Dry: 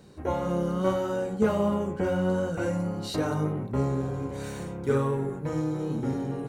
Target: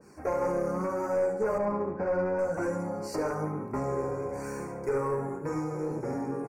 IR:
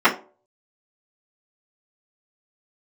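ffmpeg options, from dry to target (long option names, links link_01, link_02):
-filter_complex "[0:a]bass=frequency=250:gain=-13,treble=frequency=4000:gain=1,bandreject=frequency=124.6:width_type=h:width=4,bandreject=frequency=249.2:width_type=h:width=4,bandreject=frequency=373.8:width_type=h:width=4,bandreject=frequency=498.4:width_type=h:width=4,bandreject=frequency=623:width_type=h:width=4,bandreject=frequency=747.6:width_type=h:width=4,bandreject=frequency=872.2:width_type=h:width=4,bandreject=frequency=996.8:width_type=h:width=4,bandreject=frequency=1121.4:width_type=h:width=4,bandreject=frequency=1246:width_type=h:width=4,bandreject=frequency=1370.6:width_type=h:width=4,bandreject=frequency=1495.2:width_type=h:width=4,bandreject=frequency=1619.8:width_type=h:width=4,bandreject=frequency=1744.4:width_type=h:width=4,bandreject=frequency=1869:width_type=h:width=4,bandreject=frequency=1993.6:width_type=h:width=4,bandreject=frequency=2118.2:width_type=h:width=4,bandreject=frequency=2242.8:width_type=h:width=4,bandreject=frequency=2367.4:width_type=h:width=4,bandreject=frequency=2492:width_type=h:width=4,bandreject=frequency=2616.6:width_type=h:width=4,bandreject=frequency=2741.2:width_type=h:width=4,bandreject=frequency=2865.8:width_type=h:width=4,bandreject=frequency=2990.4:width_type=h:width=4,bandreject=frequency=3115:width_type=h:width=4,bandreject=frequency=3239.6:width_type=h:width=4,bandreject=frequency=3364.2:width_type=h:width=4,bandreject=frequency=3488.8:width_type=h:width=4,bandreject=frequency=3613.4:width_type=h:width=4,bandreject=frequency=3738:width_type=h:width=4,bandreject=frequency=3862.6:width_type=h:width=4,bandreject=frequency=3987.2:width_type=h:width=4,bandreject=frequency=4111.8:width_type=h:width=4,bandreject=frequency=4236.4:width_type=h:width=4,alimiter=limit=-22.5dB:level=0:latency=1:release=165,flanger=delay=0.7:depth=1.5:regen=-47:speed=1.1:shape=sinusoidal,aeval=exprs='clip(val(0),-1,0.0251)':channel_layout=same,asettb=1/sr,asplit=3[link_01][link_02][link_03];[link_01]atrim=end=1.584[link_04];[link_02]atrim=start=1.58:end=2.39,asetpts=PTS-STARTPTS,afade=type=in:duration=0.004:curve=qsin,afade=type=out:start_time=0.806:duration=0.004:curve=qsin,adynamicsmooth=sensitivity=7.5:basefreq=1300[link_05];[link_03]atrim=start=2.386[link_06];[link_04][link_05]acrossfade=duration=0.004:curve1=hsin:curve2=qsin[link_07];[link_07][link_06]acrossfade=duration=0.004:curve1=qsin:curve2=hsin,asuperstop=centerf=3400:order=8:qfactor=1.6,aecho=1:1:72|144|216|288|360:0.251|0.113|0.0509|0.0229|0.0103,adynamicequalizer=threshold=0.00224:dfrequency=1600:dqfactor=0.7:tfrequency=1600:tqfactor=0.7:attack=5:release=100:ratio=0.375:range=3:mode=cutabove:tftype=highshelf,volume=7dB"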